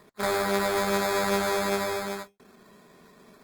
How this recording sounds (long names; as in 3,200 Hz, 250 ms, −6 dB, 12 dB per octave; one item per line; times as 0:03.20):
aliases and images of a low sample rate 2,900 Hz, jitter 0%
Opus